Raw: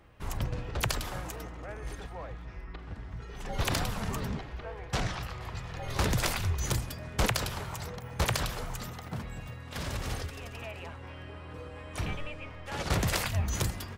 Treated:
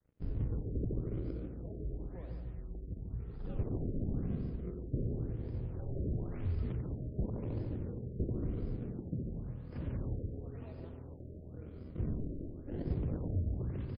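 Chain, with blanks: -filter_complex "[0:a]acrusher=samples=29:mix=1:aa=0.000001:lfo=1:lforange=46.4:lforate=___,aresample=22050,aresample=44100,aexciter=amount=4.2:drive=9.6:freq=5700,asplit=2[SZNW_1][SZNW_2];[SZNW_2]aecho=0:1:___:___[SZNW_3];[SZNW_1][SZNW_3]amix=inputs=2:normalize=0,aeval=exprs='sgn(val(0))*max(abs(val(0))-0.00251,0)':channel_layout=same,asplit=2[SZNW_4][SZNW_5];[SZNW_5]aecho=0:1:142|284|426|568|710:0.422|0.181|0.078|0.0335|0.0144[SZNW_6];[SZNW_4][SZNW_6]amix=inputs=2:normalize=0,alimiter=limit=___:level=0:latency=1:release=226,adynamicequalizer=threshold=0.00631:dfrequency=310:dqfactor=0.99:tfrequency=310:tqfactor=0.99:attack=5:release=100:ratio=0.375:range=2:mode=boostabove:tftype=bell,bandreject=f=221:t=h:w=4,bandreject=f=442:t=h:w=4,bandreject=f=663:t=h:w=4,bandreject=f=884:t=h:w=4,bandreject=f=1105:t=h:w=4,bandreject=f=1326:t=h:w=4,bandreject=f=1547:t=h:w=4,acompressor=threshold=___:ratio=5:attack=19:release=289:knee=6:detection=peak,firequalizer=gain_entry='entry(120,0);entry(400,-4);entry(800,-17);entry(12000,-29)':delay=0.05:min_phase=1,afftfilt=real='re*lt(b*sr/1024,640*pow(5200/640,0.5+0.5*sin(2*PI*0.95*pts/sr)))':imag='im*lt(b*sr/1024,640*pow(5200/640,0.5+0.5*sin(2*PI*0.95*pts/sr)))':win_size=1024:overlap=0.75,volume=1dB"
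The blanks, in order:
0.27, 89, 0.355, -14.5dB, -30dB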